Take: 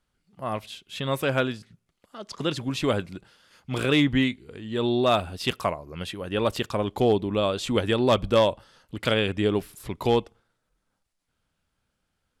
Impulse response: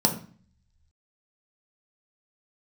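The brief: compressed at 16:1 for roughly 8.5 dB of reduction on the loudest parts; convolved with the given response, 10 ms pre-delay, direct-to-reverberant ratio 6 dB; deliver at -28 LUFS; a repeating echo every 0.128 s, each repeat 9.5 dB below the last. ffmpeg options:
-filter_complex "[0:a]acompressor=threshold=-24dB:ratio=16,aecho=1:1:128|256|384|512:0.335|0.111|0.0365|0.012,asplit=2[a][b];[1:a]atrim=start_sample=2205,adelay=10[c];[b][c]afir=irnorm=-1:irlink=0,volume=-18.5dB[d];[a][d]amix=inputs=2:normalize=0"

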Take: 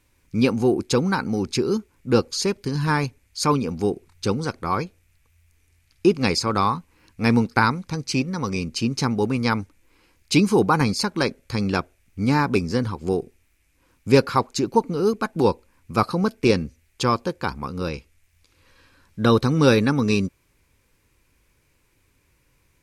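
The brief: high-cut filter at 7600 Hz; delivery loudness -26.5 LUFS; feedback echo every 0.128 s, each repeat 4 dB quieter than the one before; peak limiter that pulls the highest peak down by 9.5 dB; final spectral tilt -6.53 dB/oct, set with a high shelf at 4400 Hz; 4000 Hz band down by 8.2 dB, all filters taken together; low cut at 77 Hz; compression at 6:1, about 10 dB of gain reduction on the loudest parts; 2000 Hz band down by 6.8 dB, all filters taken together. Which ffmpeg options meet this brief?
-af "highpass=77,lowpass=7.6k,equalizer=f=2k:t=o:g=-7.5,equalizer=f=4k:t=o:g=-3.5,highshelf=f=4.4k:g=-7.5,acompressor=threshold=-22dB:ratio=6,alimiter=limit=-19dB:level=0:latency=1,aecho=1:1:128|256|384|512|640|768|896|1024|1152:0.631|0.398|0.25|0.158|0.0994|0.0626|0.0394|0.0249|0.0157,volume=2dB"

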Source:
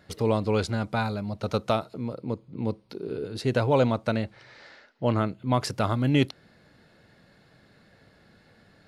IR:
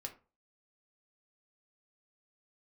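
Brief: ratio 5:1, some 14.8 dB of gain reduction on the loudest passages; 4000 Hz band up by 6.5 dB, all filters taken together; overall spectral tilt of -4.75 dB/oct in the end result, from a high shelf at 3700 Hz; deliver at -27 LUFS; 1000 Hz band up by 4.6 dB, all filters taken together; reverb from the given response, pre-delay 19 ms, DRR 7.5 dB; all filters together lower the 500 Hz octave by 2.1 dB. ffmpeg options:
-filter_complex "[0:a]equalizer=f=500:t=o:g=-4.5,equalizer=f=1k:t=o:g=6.5,highshelf=f=3.7k:g=5,equalizer=f=4k:t=o:g=4.5,acompressor=threshold=-34dB:ratio=5,asplit=2[a][b];[1:a]atrim=start_sample=2205,adelay=19[c];[b][c]afir=irnorm=-1:irlink=0,volume=-4.5dB[d];[a][d]amix=inputs=2:normalize=0,volume=10.5dB"

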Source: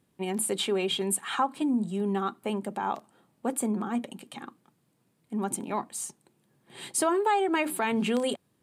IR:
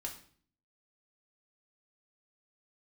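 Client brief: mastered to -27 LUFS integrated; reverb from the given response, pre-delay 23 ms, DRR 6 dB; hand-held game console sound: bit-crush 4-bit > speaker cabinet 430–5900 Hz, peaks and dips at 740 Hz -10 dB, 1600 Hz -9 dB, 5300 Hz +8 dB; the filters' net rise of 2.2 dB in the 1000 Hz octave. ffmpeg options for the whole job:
-filter_complex "[0:a]equalizer=f=1k:t=o:g=8,asplit=2[a][b];[1:a]atrim=start_sample=2205,adelay=23[c];[b][c]afir=irnorm=-1:irlink=0,volume=-4.5dB[d];[a][d]amix=inputs=2:normalize=0,acrusher=bits=3:mix=0:aa=0.000001,highpass=430,equalizer=f=740:t=q:w=4:g=-10,equalizer=f=1.6k:t=q:w=4:g=-9,equalizer=f=5.3k:t=q:w=4:g=8,lowpass=f=5.9k:w=0.5412,lowpass=f=5.9k:w=1.3066,volume=0.5dB"

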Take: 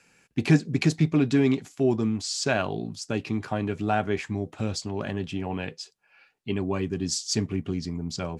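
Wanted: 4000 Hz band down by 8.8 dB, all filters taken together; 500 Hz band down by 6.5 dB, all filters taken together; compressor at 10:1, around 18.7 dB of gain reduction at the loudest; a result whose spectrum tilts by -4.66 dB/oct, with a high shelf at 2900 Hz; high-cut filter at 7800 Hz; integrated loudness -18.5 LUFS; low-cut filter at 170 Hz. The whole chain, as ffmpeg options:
-af "highpass=170,lowpass=7.8k,equalizer=f=500:t=o:g=-9,highshelf=f=2.9k:g=-4,equalizer=f=4k:t=o:g=-7.5,acompressor=threshold=-37dB:ratio=10,volume=24dB"

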